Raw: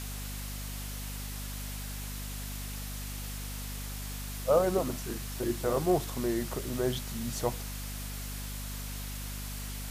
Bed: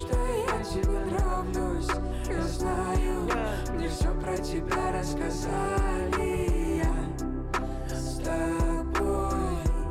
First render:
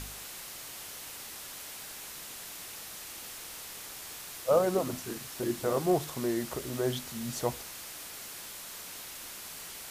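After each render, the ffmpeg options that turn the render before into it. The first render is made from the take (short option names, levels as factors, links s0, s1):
-af "bandreject=f=50:t=h:w=4,bandreject=f=100:t=h:w=4,bandreject=f=150:t=h:w=4,bandreject=f=200:t=h:w=4,bandreject=f=250:t=h:w=4"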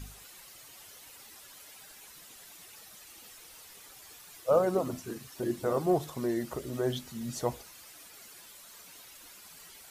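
-af "afftdn=nr=11:nf=-44"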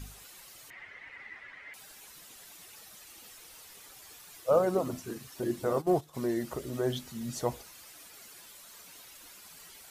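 -filter_complex "[0:a]asettb=1/sr,asplit=3[s0][s1][s2];[s0]atrim=end=0.704[s3];[s1]atrim=start=0.7:end=1.74,asetpts=PTS-STARTPTS,afade=t=in:d=0.004:c=qsin,afade=t=out:st=1.036:d=0.004:c=qsin,lowpass=f=2000:t=q:w=9.4[s4];[s2]atrim=start=1.736[s5];[s3][s4]acrossfade=d=0.004:c1=hsin:c2=qsin[s6];[s6][s5]acrossfade=d=0.004:c1=qsin:c2=hsin,asplit=3[s7][s8][s9];[s7]afade=t=out:st=5.67:d=0.02[s10];[s8]agate=range=0.2:threshold=0.0224:ratio=16:release=100:detection=peak,afade=t=in:st=5.67:d=0.02,afade=t=out:st=6.13:d=0.02[s11];[s9]afade=t=in:st=6.13:d=0.02[s12];[s10][s11][s12]amix=inputs=3:normalize=0"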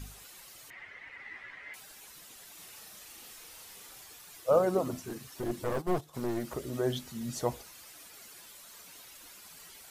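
-filter_complex "[0:a]asettb=1/sr,asplit=3[s0][s1][s2];[s0]atrim=end=1.244[s3];[s1]atrim=start=1.24:end=1.8,asetpts=PTS-STARTPTS,afade=t=in:d=0.004:c=qsin,afade=t=out:st=0.556:d=0.004:c=qsin,asplit=2[s4][s5];[s5]adelay=16,volume=0.596[s6];[s4][s6]amix=inputs=2:normalize=0,atrim=end_sample=24696[s7];[s2]atrim=start=1.796[s8];[s3][s7]acrossfade=d=0.004:c1=hsin:c2=qsin[s9];[s9][s8]acrossfade=d=0.004:c1=qsin:c2=hsin,asettb=1/sr,asplit=3[s10][s11][s12];[s10]atrim=end=2.534[s13];[s11]atrim=start=2.53:end=4.04,asetpts=PTS-STARTPTS,afade=t=in:d=0.004:c=qsin,afade=t=out:st=1.506:d=0.004:c=qsin,asplit=2[s14][s15];[s15]adelay=38,volume=0.631[s16];[s14][s16]amix=inputs=2:normalize=0,atrim=end_sample=66591[s17];[s12]atrim=start=4.036[s18];[s13][s17]acrossfade=d=0.004:c1=hsin:c2=qsin[s19];[s19][s18]acrossfade=d=0.004:c1=qsin:c2=hsin,asettb=1/sr,asplit=3[s20][s21][s22];[s20]atrim=end=5.054[s23];[s21]atrim=start=5.05:end=6.55,asetpts=PTS-STARTPTS,afade=t=in:d=0.004:c=qsin,afade=t=out:st=1.496:d=0.004:c=qsin,aeval=exprs='clip(val(0),-1,0.015)':c=same[s24];[s22]atrim=start=6.546[s25];[s23][s24]acrossfade=d=0.004:c1=hsin:c2=qsin[s26];[s26][s25]acrossfade=d=0.004:c1=qsin:c2=hsin"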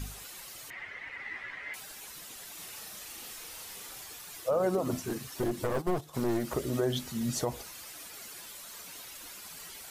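-af "acontrast=36,alimiter=limit=0.1:level=0:latency=1:release=130"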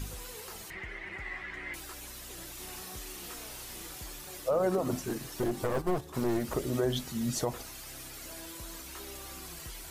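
-filter_complex "[1:a]volume=0.0891[s0];[0:a][s0]amix=inputs=2:normalize=0"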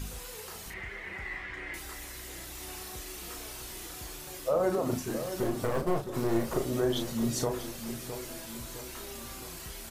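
-filter_complex "[0:a]asplit=2[s0][s1];[s1]adelay=35,volume=0.501[s2];[s0][s2]amix=inputs=2:normalize=0,asplit=2[s3][s4];[s4]adelay=662,lowpass=f=1700:p=1,volume=0.335,asplit=2[s5][s6];[s6]adelay=662,lowpass=f=1700:p=1,volume=0.51,asplit=2[s7][s8];[s8]adelay=662,lowpass=f=1700:p=1,volume=0.51,asplit=2[s9][s10];[s10]adelay=662,lowpass=f=1700:p=1,volume=0.51,asplit=2[s11][s12];[s12]adelay=662,lowpass=f=1700:p=1,volume=0.51,asplit=2[s13][s14];[s14]adelay=662,lowpass=f=1700:p=1,volume=0.51[s15];[s5][s7][s9][s11][s13][s15]amix=inputs=6:normalize=0[s16];[s3][s16]amix=inputs=2:normalize=0"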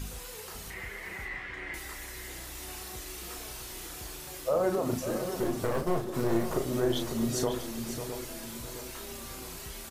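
-af "aecho=1:1:548:0.335"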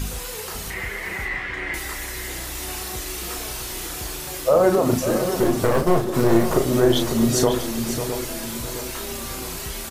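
-af "volume=3.55"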